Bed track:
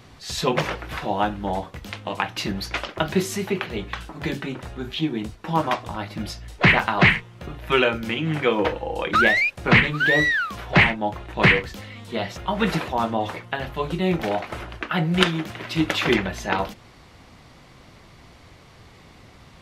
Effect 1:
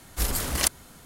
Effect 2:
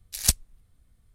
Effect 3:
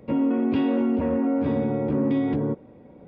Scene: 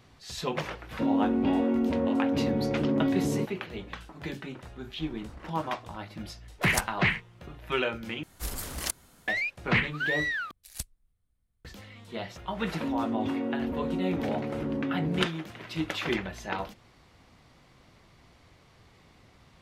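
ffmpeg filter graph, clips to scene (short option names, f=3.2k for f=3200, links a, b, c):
-filter_complex "[3:a]asplit=2[a][b];[1:a]asplit=2[c][d];[2:a]asplit=2[e][f];[0:a]volume=-9.5dB[g];[c]lowpass=1.6k[h];[f]equalizer=f=5.7k:t=o:w=0.77:g=-4.5[i];[g]asplit=3[j][k][l];[j]atrim=end=8.234[m];[d]atrim=end=1.05,asetpts=PTS-STARTPTS,volume=-8.5dB[n];[k]atrim=start=9.276:end=10.514[o];[i]atrim=end=1.14,asetpts=PTS-STARTPTS,volume=-15dB[p];[l]atrim=start=11.646[q];[a]atrim=end=3.07,asetpts=PTS-STARTPTS,volume=-3.5dB,afade=t=in:d=0.004:c=hsin,afade=t=out:st=3.066:d=0.004:c=hsin,adelay=910[r];[h]atrim=end=1.05,asetpts=PTS-STARTPTS,volume=-17dB,afade=t=in:d=0.004:c=hsin,afade=t=out:st=1.046:d=0.004:c=hsin,adelay=4820[s];[e]atrim=end=1.14,asetpts=PTS-STARTPTS,volume=-10dB,afade=t=in:d=0.004:c=hsin,afade=t=out:st=1.136:d=0.004:c=hsin,adelay=6490[t];[b]atrim=end=3.07,asetpts=PTS-STARTPTS,volume=-8.5dB,afade=t=in:d=0.004:c=hsin,afade=t=out:st=3.066:d=0.004:c=hsin,adelay=12720[u];[m][n]acrossfade=d=0.004:c1=hsin:c2=hsin[v];[v][o]acrossfade=d=0.004:c1=hsin:c2=hsin[w];[w][p]acrossfade=d=0.004:c1=hsin:c2=hsin[x];[x][q]acrossfade=d=0.004:c1=hsin:c2=hsin[y];[y][r][s][t][u]amix=inputs=5:normalize=0"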